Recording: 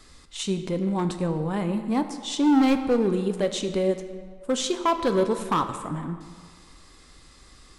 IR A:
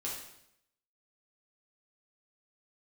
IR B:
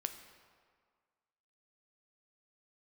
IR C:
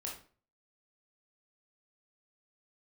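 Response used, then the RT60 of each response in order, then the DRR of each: B; 0.75 s, 1.8 s, 0.40 s; -5.5 dB, 7.5 dB, -2.5 dB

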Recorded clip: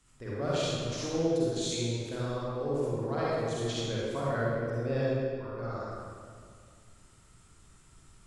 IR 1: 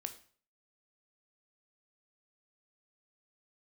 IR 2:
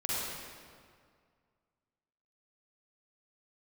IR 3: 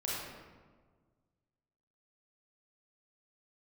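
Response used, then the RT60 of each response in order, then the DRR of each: 2; 0.45 s, 2.0 s, 1.5 s; 7.0 dB, -8.0 dB, -7.0 dB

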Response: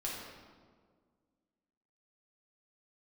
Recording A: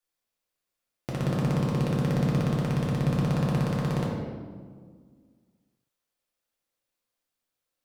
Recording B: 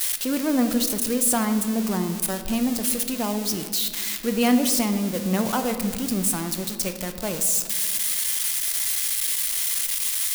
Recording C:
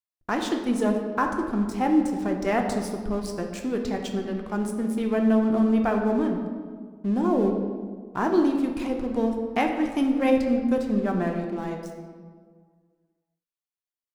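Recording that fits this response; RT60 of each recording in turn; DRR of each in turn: A; 1.7 s, 1.8 s, 1.7 s; -5.5 dB, 7.0 dB, 2.0 dB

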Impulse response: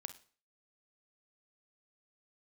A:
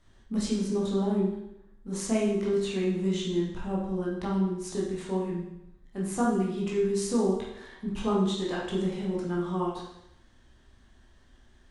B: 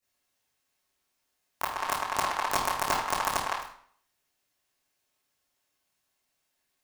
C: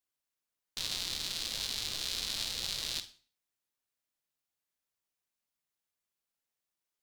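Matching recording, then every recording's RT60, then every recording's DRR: C; 0.85 s, 0.55 s, 0.45 s; -5.5 dB, -12.0 dB, 10.0 dB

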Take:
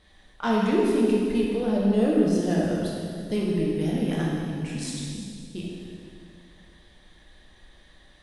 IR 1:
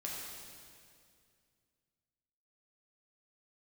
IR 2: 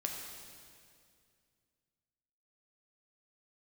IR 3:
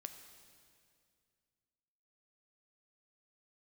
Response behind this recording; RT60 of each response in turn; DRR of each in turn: 1; 2.2 s, 2.2 s, 2.2 s; -4.0 dB, 0.5 dB, 7.0 dB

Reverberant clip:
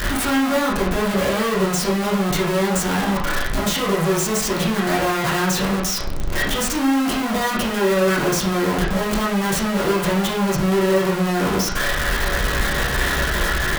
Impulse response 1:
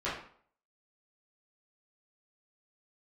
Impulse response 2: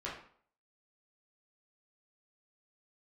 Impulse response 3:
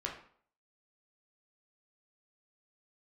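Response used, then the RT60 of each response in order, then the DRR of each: 2; 0.55 s, 0.55 s, 0.55 s; -11.0 dB, -7.0 dB, -1.5 dB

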